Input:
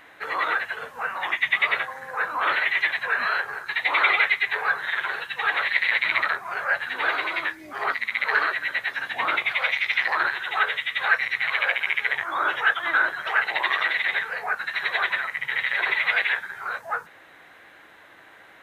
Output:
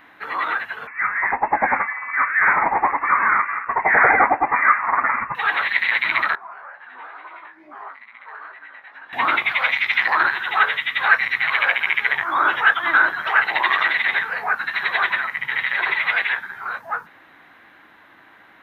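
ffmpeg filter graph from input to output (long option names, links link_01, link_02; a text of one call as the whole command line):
ffmpeg -i in.wav -filter_complex "[0:a]asettb=1/sr,asplit=3[link_01][link_02][link_03];[link_01]atrim=end=0.874[link_04];[link_02]atrim=start=0.87:end=5.35,asetpts=PTS-STARTPTS,afade=type=in:duration=0.004:curve=qsin,afade=type=out:start_time=4.476:duration=0.004:curve=qsin,equalizer=frequency=760:width_type=o:width=1.3:gain=11.5,lowpass=frequency=2400:width_type=q:width=0.5098,lowpass=frequency=2400:width_type=q:width=0.6013,lowpass=frequency=2400:width_type=q:width=0.9,lowpass=frequency=2400:width_type=q:width=2.563,afreqshift=-2800[link_05];[link_03]atrim=start=5.346[link_06];[link_04][link_05]acrossfade=duration=0.004:curve1=hsin:curve2=qsin[link_07];[link_07][link_06]acrossfade=duration=0.004:curve1=qsin:curve2=hsin,asettb=1/sr,asplit=3[link_08][link_09][link_10];[link_08]atrim=end=6.354[link_11];[link_09]atrim=start=6.35:end=9.13,asetpts=PTS-STARTPTS,afade=type=in:duration=0.004:curve=qsin,afade=type=out:start_time=2.776:duration=0.004:curve=qsin,acompressor=threshold=-33dB:ratio=5:attack=3.2:release=140:knee=1:detection=peak,flanger=delay=16.5:depth=4.8:speed=2.2,bandpass=frequency=840:width_type=q:width=1[link_12];[link_10]atrim=start=9.126[link_13];[link_11][link_12]acrossfade=duration=0.004:curve1=hsin:curve2=qsin[link_14];[link_14][link_13]acrossfade=duration=0.004:curve1=qsin:curve2=hsin,equalizer=frequency=250:width_type=o:width=1:gain=7,equalizer=frequency=500:width_type=o:width=1:gain=-6,equalizer=frequency=1000:width_type=o:width=1:gain=4,equalizer=frequency=8000:width_type=o:width=1:gain=-11,dynaudnorm=framelen=520:gausssize=13:maxgain=7dB" out.wav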